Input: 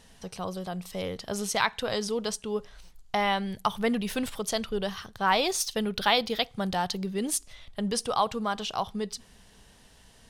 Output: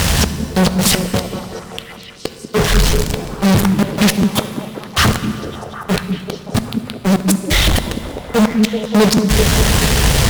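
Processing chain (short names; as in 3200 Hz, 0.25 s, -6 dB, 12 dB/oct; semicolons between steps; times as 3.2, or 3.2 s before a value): HPF 40 Hz 12 dB/oct; resonant low shelf 170 Hz +7.5 dB, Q 1.5; in parallel at +2 dB: limiter -20.5 dBFS, peak gain reduction 11 dB; on the sum: compressor 8:1, threshold -28 dBFS, peak gain reduction 13 dB; requantised 8-bit, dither none; flipped gate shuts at -23 dBFS, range -38 dB; fuzz box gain 54 dB, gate -45 dBFS; delay with a stepping band-pass 0.192 s, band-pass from 240 Hz, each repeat 0.7 oct, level -1.5 dB; on a send at -9 dB: reverb RT60 2.5 s, pre-delay 3 ms; on the sum: crackling interface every 0.33 s, samples 512, repeat, from 0.91; Doppler distortion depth 0.39 ms; gain +4 dB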